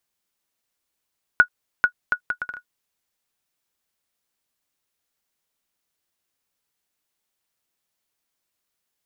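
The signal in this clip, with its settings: bouncing ball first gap 0.44 s, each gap 0.64, 1460 Hz, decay 83 ms -2.5 dBFS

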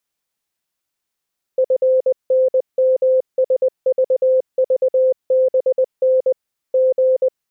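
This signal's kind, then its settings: Morse "FNMSVVBN G" 20 wpm 518 Hz -11 dBFS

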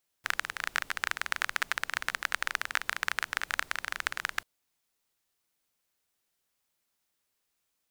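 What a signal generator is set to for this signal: rain from filtered ticks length 4.19 s, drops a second 21, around 1600 Hz, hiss -21 dB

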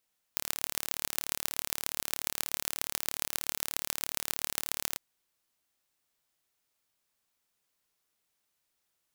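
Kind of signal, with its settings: pulse train 36.8/s, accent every 5, -1.5 dBFS 4.61 s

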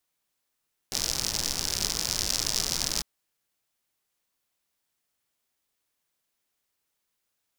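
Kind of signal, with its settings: rain from filtered ticks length 2.10 s, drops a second 98, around 5300 Hz, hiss -6.5 dB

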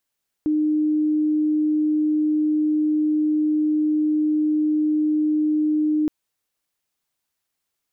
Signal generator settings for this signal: tone sine 305 Hz -17 dBFS 5.62 s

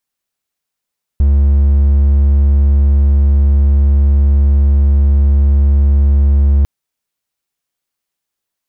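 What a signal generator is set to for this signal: tone triangle 70.3 Hz -4.5 dBFS 5.45 s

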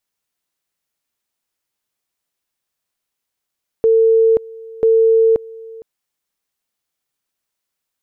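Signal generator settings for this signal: two-level tone 450 Hz -8.5 dBFS, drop 22.5 dB, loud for 0.53 s, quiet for 0.46 s, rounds 2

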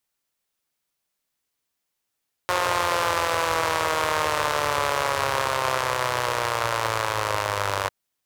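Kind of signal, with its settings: four-cylinder engine model, changing speed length 5.40 s, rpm 5400, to 2900, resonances 99/570/980 Hz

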